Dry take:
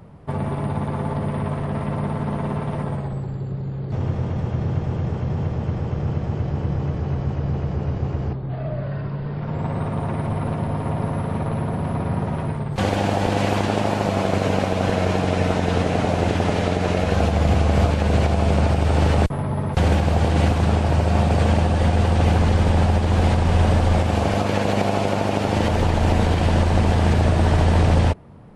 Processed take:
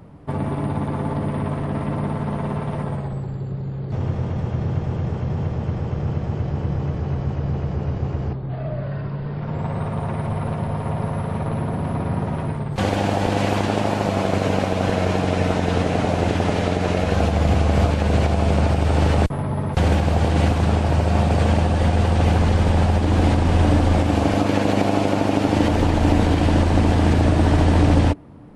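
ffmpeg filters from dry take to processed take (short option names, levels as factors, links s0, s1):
-af "asetnsamples=n=441:p=0,asendcmd='2.16 equalizer g -0.5;9.61 equalizer g -9.5;11.46 equalizer g 2;22.99 equalizer g 12',equalizer=f=290:t=o:w=0.26:g=8"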